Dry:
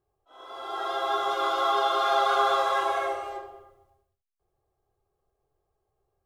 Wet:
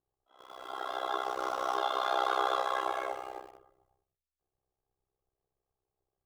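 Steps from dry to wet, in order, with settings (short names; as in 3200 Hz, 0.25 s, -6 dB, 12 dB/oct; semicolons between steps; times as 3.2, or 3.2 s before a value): 1.24–1.78 median filter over 15 samples; AM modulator 64 Hz, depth 90%; in parallel at -5.5 dB: sample gate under -42 dBFS; on the sum: gain -6.5 dB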